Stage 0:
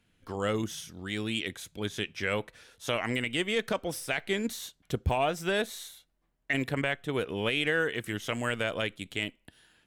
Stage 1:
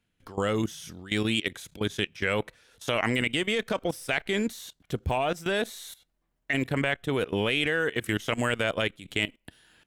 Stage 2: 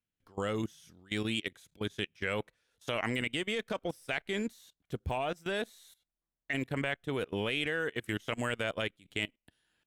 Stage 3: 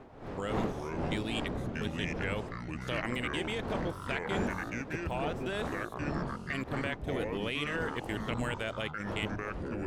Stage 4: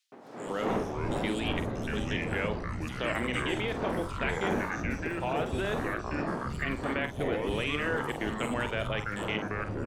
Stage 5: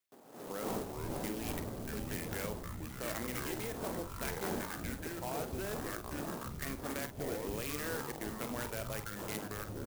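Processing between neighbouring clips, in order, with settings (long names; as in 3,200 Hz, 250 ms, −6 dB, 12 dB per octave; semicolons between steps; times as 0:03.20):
output level in coarse steps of 17 dB; level +8 dB
expander for the loud parts 1.5 to 1, over −46 dBFS; level −6 dB
wind on the microphone 620 Hz −41 dBFS; delay with pitch and tempo change per echo 263 ms, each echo −5 semitones, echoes 3; level −2.5 dB
double-tracking delay 47 ms −10 dB; three-band delay without the direct sound highs, mids, lows 120/460 ms, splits 160/4,000 Hz; level +3.5 dB
converter with an unsteady clock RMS 0.079 ms; level −8 dB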